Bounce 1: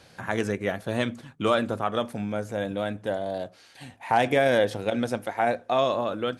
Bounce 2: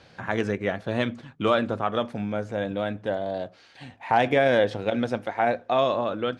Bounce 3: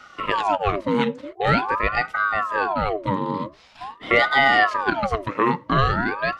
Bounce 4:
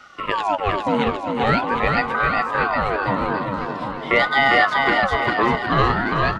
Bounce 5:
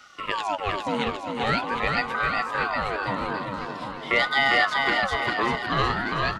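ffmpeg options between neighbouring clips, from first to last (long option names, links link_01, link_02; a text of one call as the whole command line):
ffmpeg -i in.wav -af "lowpass=4600,volume=1dB" out.wav
ffmpeg -i in.wav -af "afftfilt=real='re*(1-between(b*sr/4096,210,470))':imag='im*(1-between(b*sr/4096,210,470))':win_size=4096:overlap=0.75,equalizer=frequency=61:width=0.38:gain=14,aeval=exprs='val(0)*sin(2*PI*860*n/s+860*0.6/0.45*sin(2*PI*0.45*n/s))':channel_layout=same,volume=5dB" out.wav
ffmpeg -i in.wav -af "aecho=1:1:400|760|1084|1376|1638:0.631|0.398|0.251|0.158|0.1" out.wav
ffmpeg -i in.wav -af "highshelf=frequency=2800:gain=11.5,volume=-7.5dB" out.wav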